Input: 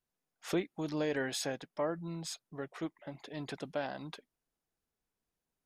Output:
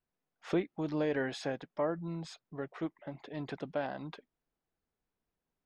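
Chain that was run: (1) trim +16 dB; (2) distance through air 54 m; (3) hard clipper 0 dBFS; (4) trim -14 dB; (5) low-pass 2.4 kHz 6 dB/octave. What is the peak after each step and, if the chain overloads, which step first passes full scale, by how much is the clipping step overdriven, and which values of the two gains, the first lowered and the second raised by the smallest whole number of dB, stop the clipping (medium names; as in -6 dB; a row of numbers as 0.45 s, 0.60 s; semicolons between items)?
-6.0 dBFS, -6.0 dBFS, -6.0 dBFS, -20.0 dBFS, -20.5 dBFS; nothing clips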